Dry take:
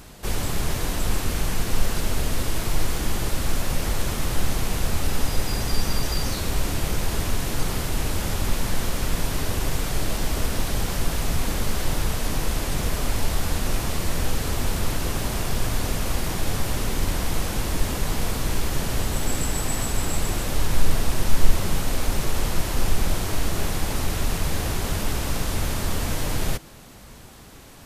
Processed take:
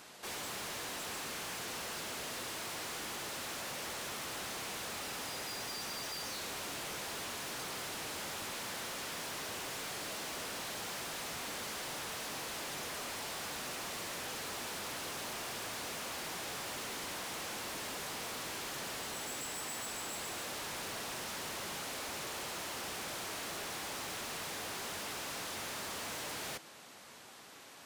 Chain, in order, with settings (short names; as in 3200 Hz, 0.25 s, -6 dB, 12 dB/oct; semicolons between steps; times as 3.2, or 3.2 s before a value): weighting filter A; overloaded stage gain 34.5 dB; gain -5 dB